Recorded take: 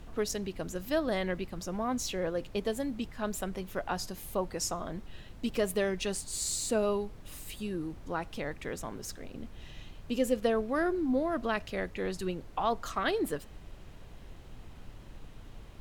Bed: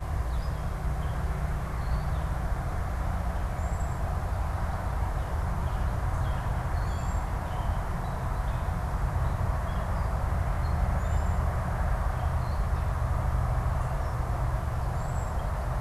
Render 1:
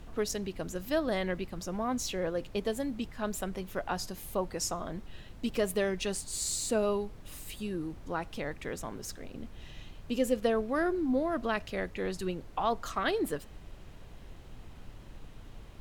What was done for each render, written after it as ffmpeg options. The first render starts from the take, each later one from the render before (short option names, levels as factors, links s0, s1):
-af anull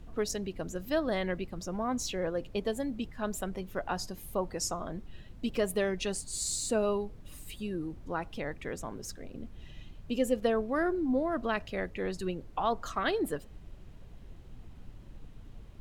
-af "afftdn=nr=7:nf=-49"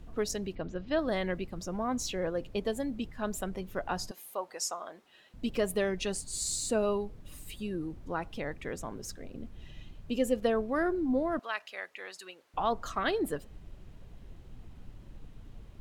-filter_complex "[0:a]asettb=1/sr,asplit=3[s0][s1][s2];[s0]atrim=end=0.554[s3];[s1]atrim=start=0.55:end=0.99,asetpts=PTS-STARTPTS,afade=t=in:d=0.004:c=qsin,afade=t=out:st=0.436:d=0.004:c=qsin,lowpass=f=4300:w=0.5412,lowpass=f=4300:w=1.3066[s4];[s2]atrim=start=0.986[s5];[s3][s4]acrossfade=d=0.004:c1=hsin:c2=qsin[s6];[s6][s5]acrossfade=d=0.004:c1=qsin:c2=hsin,asettb=1/sr,asplit=3[s7][s8][s9];[s7]atrim=end=4.114[s10];[s8]atrim=start=4.11:end=5.34,asetpts=PTS-STARTPTS,afade=t=in:d=0.004:c=qsin,afade=t=out:st=1.226:d=0.004:c=qsin,highpass=620[s11];[s9]atrim=start=5.336[s12];[s10][s11]acrossfade=d=0.004:c1=hsin:c2=qsin[s13];[s13][s12]acrossfade=d=0.004:c1=qsin:c2=hsin,asettb=1/sr,asplit=3[s14][s15][s16];[s14]atrim=end=11.394[s17];[s15]atrim=start=11.39:end=12.54,asetpts=PTS-STARTPTS,afade=t=in:d=0.004:c=qsin,afade=t=out:st=1.146:d=0.004:c=qsin,highpass=990[s18];[s16]atrim=start=12.536[s19];[s17][s18]acrossfade=d=0.004:c1=hsin:c2=qsin[s20];[s20][s19]acrossfade=d=0.004:c1=qsin:c2=hsin"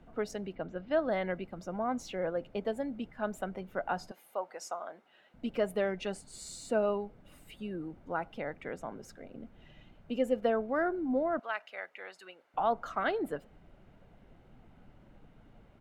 -filter_complex "[0:a]acrossover=split=170 2600:gain=0.178 1 0.2[s0][s1][s2];[s0][s1][s2]amix=inputs=3:normalize=0,aecho=1:1:1.4:0.32"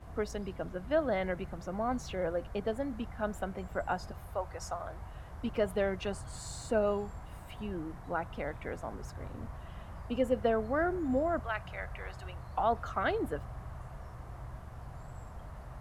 -filter_complex "[1:a]volume=0.158[s0];[0:a][s0]amix=inputs=2:normalize=0"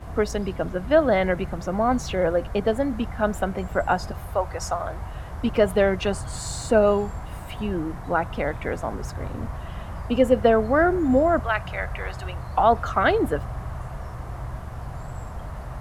-af "volume=3.76"